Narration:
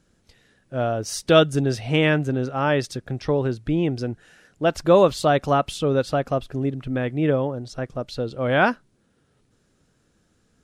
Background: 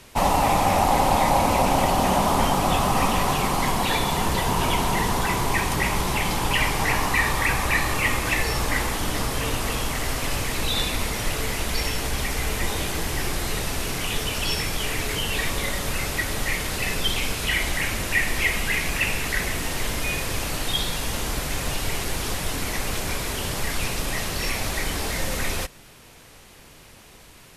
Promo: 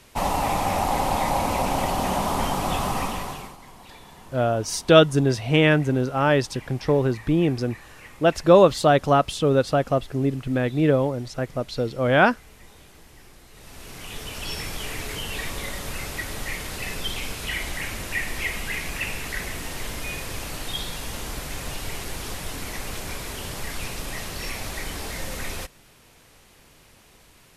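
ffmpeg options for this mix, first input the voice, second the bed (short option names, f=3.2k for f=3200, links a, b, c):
-filter_complex "[0:a]adelay=3600,volume=1.5dB[a];[1:a]volume=14dB,afade=t=out:st=2.88:d=0.69:silence=0.105925,afade=t=in:st=13.52:d=1.13:silence=0.125893[b];[a][b]amix=inputs=2:normalize=0"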